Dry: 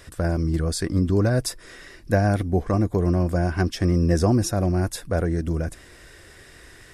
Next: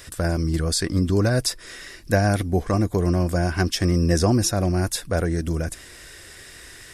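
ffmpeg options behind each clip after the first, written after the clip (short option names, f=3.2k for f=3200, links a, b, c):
-filter_complex "[0:a]highshelf=f=2.2k:g=9.5,acrossover=split=5900[a][b];[b]alimiter=limit=-18dB:level=0:latency=1:release=282[c];[a][c]amix=inputs=2:normalize=0"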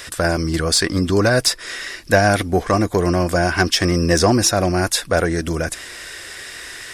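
-filter_complex "[0:a]asplit=2[a][b];[b]highpass=f=720:p=1,volume=12dB,asoftclip=type=tanh:threshold=-5dB[c];[a][c]amix=inputs=2:normalize=0,lowpass=f=5.6k:p=1,volume=-6dB,volume=4dB"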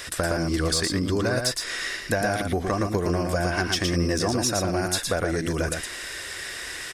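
-af "acompressor=threshold=-20dB:ratio=6,aecho=1:1:115:0.596,volume=-2dB"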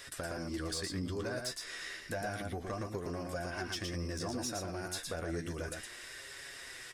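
-af "asoftclip=type=tanh:threshold=-14.5dB,flanger=delay=7.2:depth=5.9:regen=45:speed=0.31:shape=sinusoidal,volume=-9dB"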